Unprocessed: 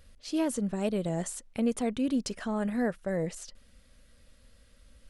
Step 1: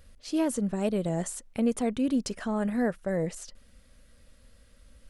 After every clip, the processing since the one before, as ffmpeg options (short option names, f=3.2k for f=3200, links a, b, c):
-af "equalizer=f=3.6k:t=o:w=1.6:g=-2.5,volume=2dB"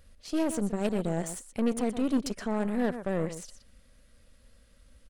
-af "aecho=1:1:122:0.266,aeval=exprs='0.188*(cos(1*acos(clip(val(0)/0.188,-1,1)))-cos(1*PI/2))+0.015*(cos(3*acos(clip(val(0)/0.188,-1,1)))-cos(3*PI/2))+0.0119*(cos(8*acos(clip(val(0)/0.188,-1,1)))-cos(8*PI/2))':c=same"